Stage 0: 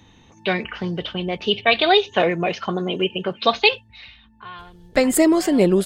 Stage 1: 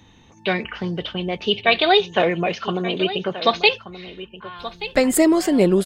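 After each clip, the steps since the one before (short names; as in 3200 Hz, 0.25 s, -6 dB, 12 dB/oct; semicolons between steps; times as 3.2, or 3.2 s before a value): echo 1.179 s -14 dB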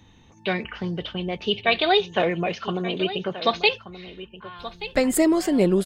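low shelf 140 Hz +4.5 dB; gain -4 dB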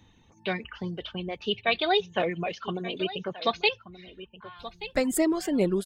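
reverb removal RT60 0.75 s; gain -4.5 dB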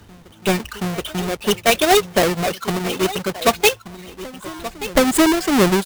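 half-waves squared off; reverse echo 0.725 s -21 dB; gain +6 dB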